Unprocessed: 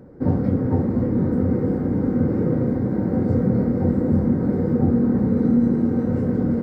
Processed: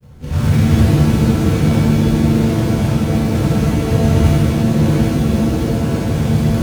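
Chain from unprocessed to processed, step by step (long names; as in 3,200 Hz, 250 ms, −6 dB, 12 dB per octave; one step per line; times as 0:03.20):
low shelf with overshoot 160 Hz +14 dB, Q 1.5
reversed playback
upward compression, threshold −10 dBFS
reversed playback
floating-point word with a short mantissa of 2 bits
granular cloud
reverb with rising layers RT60 1.4 s, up +7 semitones, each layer −2 dB, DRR −6.5 dB
level −9.5 dB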